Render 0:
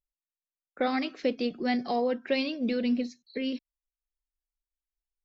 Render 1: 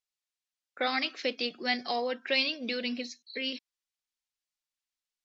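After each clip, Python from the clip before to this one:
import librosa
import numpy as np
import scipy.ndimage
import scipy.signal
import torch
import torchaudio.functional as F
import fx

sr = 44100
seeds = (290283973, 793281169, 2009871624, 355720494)

y = scipy.signal.sosfilt(scipy.signal.butter(2, 5000.0, 'lowpass', fs=sr, output='sos'), x)
y = fx.tilt_eq(y, sr, slope=4.5)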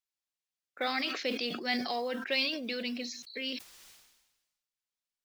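y = fx.mod_noise(x, sr, seeds[0], snr_db=31)
y = fx.sustainer(y, sr, db_per_s=50.0)
y = y * librosa.db_to_amplitude(-3.0)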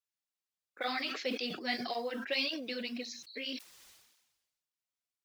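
y = fx.flanger_cancel(x, sr, hz=1.8, depth_ms=6.8)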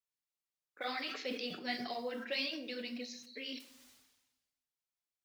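y = fx.room_shoebox(x, sr, seeds[1], volume_m3=150.0, walls='mixed', distance_m=0.37)
y = y * librosa.db_to_amplitude(-4.5)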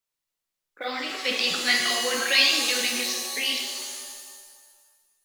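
y = fx.spec_box(x, sr, start_s=1.25, length_s=2.97, low_hz=1000.0, high_hz=8200.0, gain_db=11)
y = fx.rev_shimmer(y, sr, seeds[2], rt60_s=1.5, semitones=7, shimmer_db=-2, drr_db=4.0)
y = y * librosa.db_to_amplitude(6.5)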